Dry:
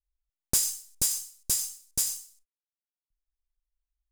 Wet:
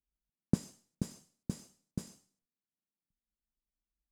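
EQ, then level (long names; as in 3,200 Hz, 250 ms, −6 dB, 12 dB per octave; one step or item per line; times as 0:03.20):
resonant band-pass 200 Hz, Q 2.3
+13.5 dB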